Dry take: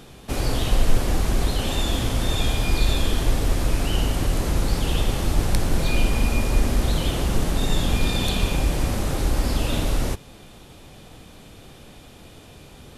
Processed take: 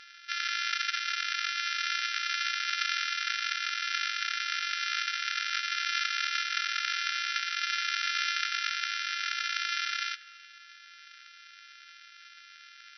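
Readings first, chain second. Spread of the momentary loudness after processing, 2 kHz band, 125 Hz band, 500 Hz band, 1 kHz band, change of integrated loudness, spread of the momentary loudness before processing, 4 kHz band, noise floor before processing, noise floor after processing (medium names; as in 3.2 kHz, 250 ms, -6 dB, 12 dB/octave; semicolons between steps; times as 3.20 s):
5 LU, +3.5 dB, under -40 dB, under -40 dB, -2.0 dB, -5.5 dB, 2 LU, -0.5 dB, -46 dBFS, -53 dBFS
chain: sorted samples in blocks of 128 samples; brick-wall FIR band-pass 1.3–5.9 kHz; spring tank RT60 2.1 s, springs 38 ms, chirp 65 ms, DRR 17.5 dB; trim +2 dB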